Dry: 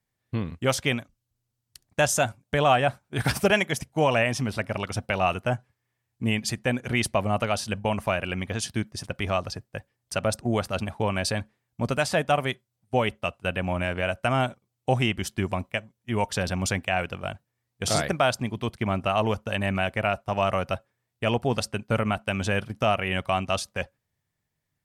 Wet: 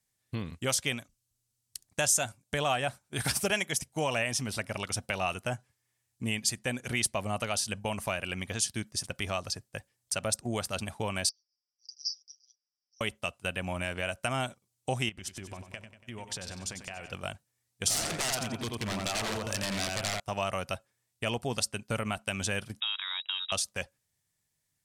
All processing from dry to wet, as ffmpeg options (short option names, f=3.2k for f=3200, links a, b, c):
-filter_complex "[0:a]asettb=1/sr,asplit=3[a][b][c];[a]atrim=end=11.294[d];[b]atrim=start=11.29:end=13.01,asetpts=PTS-STARTPTS,afade=t=in:d=0.004:c=qsin,afade=t=out:st=1.716:d=0.004:c=qsin,asuperpass=centerf=5200:order=8:qfactor=4.8,aecho=1:1:6.7:0.58,atrim=end_sample=75852[e];[c]atrim=start=13.006[f];[d][e]acrossfade=d=0.004:c1=hsin:c2=qsin[g];[g][f]acrossfade=d=0.004:c1=qsin:c2=hsin,asettb=1/sr,asplit=3[h][i][j];[h]atrim=end=15.094[k];[i]atrim=start=15.09:end=17.13,asetpts=PTS-STARTPTS,afade=t=in:d=0.004:c=qsin,afade=t=out:st=2.036:d=0.004:c=qsin,lowpass=f=3.9k:p=1,acompressor=threshold=-35dB:ratio=6:attack=3.2:release=140:knee=1:detection=peak,aecho=1:1:95|190|285|380|475|570:0.316|0.168|0.0888|0.0471|0.025|0.0132,atrim=end_sample=89964[l];[j]atrim=start=17.126[m];[k][l]acrossfade=d=0.004:c1=hsin:c2=qsin[n];[n][m]acrossfade=d=0.004:c1=qsin:c2=hsin,asettb=1/sr,asplit=3[o][p][q];[o]atrim=end=17.884[r];[p]atrim=start=17.88:end=20.2,asetpts=PTS-STARTPTS,afade=t=in:d=0.004:c=qsin,afade=t=out:st=2.316:d=0.004:c=qsin,asplit=2[s][t];[t]adelay=87,lowpass=f=3.3k:p=1,volume=-3.5dB,asplit=2[u][v];[v]adelay=87,lowpass=f=3.3k:p=1,volume=0.45,asplit=2[w][x];[x]adelay=87,lowpass=f=3.3k:p=1,volume=0.45,asplit=2[y][z];[z]adelay=87,lowpass=f=3.3k:p=1,volume=0.45,asplit=2[aa][ab];[ab]adelay=87,lowpass=f=3.3k:p=1,volume=0.45,asplit=2[ac][ad];[ad]adelay=87,lowpass=f=3.3k:p=1,volume=0.45[ae];[s][u][w][y][aa][ac][ae]amix=inputs=7:normalize=0,atrim=end_sample=102312,aeval=exprs='0.0794*(abs(mod(val(0)/0.0794+3,4)-2)-1)':c=same[af];[q]atrim=start=20.196[ag];[r][af]acrossfade=d=0.004:c1=hsin:c2=qsin[ah];[ah][ag]acrossfade=d=0.004:c1=qsin:c2=hsin,asettb=1/sr,asplit=3[ai][aj][ak];[ai]atrim=end=22.804[al];[aj]atrim=start=22.8:end=23.52,asetpts=PTS-STARTPTS,afade=t=in:d=0.004:c=qsin,afade=t=out:st=0.716:d=0.004:c=qsin,acompressor=threshold=-33dB:ratio=2:attack=3.2:release=140:knee=1:detection=peak,aeval=exprs='sgn(val(0))*max(abs(val(0))-0.00355,0)':c=same,lowpass=f=3.3k:t=q:w=0.5098,lowpass=f=3.3k:t=q:w=0.6013,lowpass=f=3.3k:t=q:w=0.9,lowpass=f=3.3k:t=q:w=2.563,afreqshift=-3900[am];[ak]atrim=start=23.516[an];[al][am]acrossfade=d=0.004:c1=hsin:c2=qsin[ao];[ao][an]acrossfade=d=0.004:c1=qsin:c2=hsin,equalizer=f=8.7k:w=0.41:g=14.5,acompressor=threshold=-29dB:ratio=1.5,volume=-5dB"